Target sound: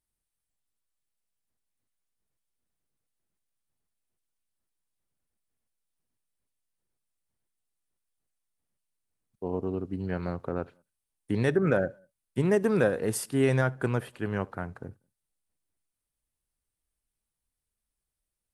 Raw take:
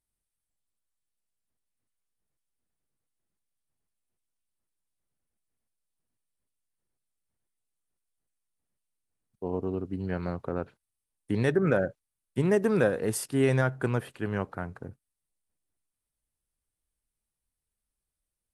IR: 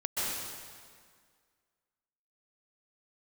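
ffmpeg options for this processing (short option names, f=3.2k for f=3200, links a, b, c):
-filter_complex "[0:a]asplit=2[a][b];[1:a]atrim=start_sample=2205,afade=t=out:st=0.17:d=0.01,atrim=end_sample=7938,adelay=71[c];[b][c]afir=irnorm=-1:irlink=0,volume=-25.5dB[d];[a][d]amix=inputs=2:normalize=0"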